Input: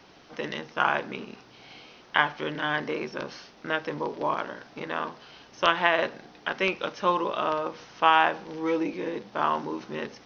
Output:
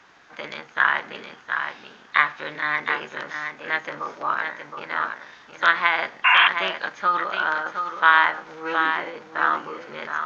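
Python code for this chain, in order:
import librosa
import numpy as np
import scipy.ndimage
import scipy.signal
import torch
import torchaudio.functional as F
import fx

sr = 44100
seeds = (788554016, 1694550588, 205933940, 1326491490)

p1 = fx.peak_eq(x, sr, hz=1300.0, db=14.0, octaves=1.6)
p2 = p1 + fx.echo_single(p1, sr, ms=717, db=-6.5, dry=0)
p3 = fx.spec_paint(p2, sr, seeds[0], shape='noise', start_s=6.24, length_s=0.24, low_hz=690.0, high_hz=2800.0, level_db=-8.0)
p4 = fx.formant_shift(p3, sr, semitones=3)
y = p4 * librosa.db_to_amplitude(-7.0)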